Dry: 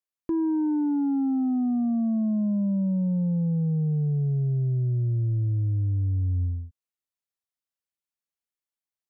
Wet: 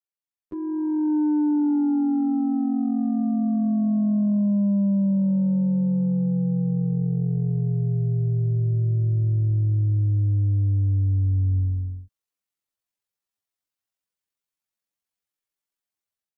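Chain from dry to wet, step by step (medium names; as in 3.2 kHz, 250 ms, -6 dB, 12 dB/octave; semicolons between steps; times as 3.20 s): level rider gain up to 10 dB; granular stretch 1.8×, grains 45 ms; trim -6 dB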